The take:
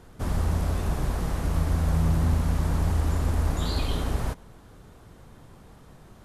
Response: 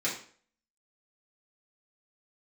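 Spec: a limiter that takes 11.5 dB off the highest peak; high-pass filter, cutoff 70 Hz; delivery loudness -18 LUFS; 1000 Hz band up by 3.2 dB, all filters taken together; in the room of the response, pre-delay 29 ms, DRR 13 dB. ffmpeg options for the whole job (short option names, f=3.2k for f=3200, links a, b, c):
-filter_complex "[0:a]highpass=70,equalizer=f=1k:t=o:g=4,alimiter=level_in=2dB:limit=-24dB:level=0:latency=1,volume=-2dB,asplit=2[a][b];[1:a]atrim=start_sample=2205,adelay=29[c];[b][c]afir=irnorm=-1:irlink=0,volume=-20.5dB[d];[a][d]amix=inputs=2:normalize=0,volume=17dB"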